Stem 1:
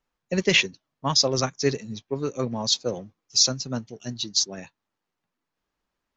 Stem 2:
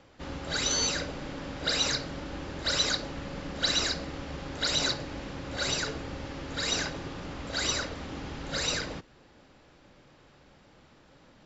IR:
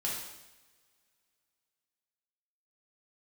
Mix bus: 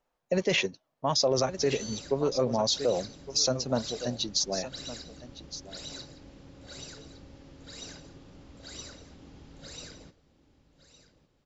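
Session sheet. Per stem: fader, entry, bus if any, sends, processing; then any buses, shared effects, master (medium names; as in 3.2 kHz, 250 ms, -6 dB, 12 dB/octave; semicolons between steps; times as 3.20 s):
-2.0 dB, 0.00 s, no send, echo send -16.5 dB, peaking EQ 620 Hz +11 dB 1.2 oct
-10.5 dB, 1.10 s, no send, echo send -15 dB, peaking EQ 1.5 kHz -9 dB 2.7 oct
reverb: none
echo: delay 1162 ms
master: peak limiter -16.5 dBFS, peak gain reduction 10 dB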